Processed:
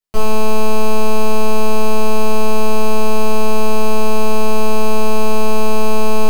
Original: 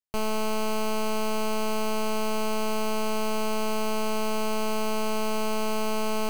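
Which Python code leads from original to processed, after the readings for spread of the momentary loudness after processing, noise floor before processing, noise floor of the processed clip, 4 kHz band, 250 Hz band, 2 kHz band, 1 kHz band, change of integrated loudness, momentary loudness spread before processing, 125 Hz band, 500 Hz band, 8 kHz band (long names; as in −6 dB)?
0 LU, −25 dBFS, −5 dBFS, +6.0 dB, +10.0 dB, +7.5 dB, +10.0 dB, +10.0 dB, 0 LU, can't be measured, +11.5 dB, +7.0 dB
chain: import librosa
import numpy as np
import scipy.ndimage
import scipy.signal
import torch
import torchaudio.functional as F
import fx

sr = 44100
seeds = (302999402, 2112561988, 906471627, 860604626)

y = fx.room_shoebox(x, sr, seeds[0], volume_m3=48.0, walls='mixed', distance_m=1.1)
y = y * 10.0 ** (2.0 / 20.0)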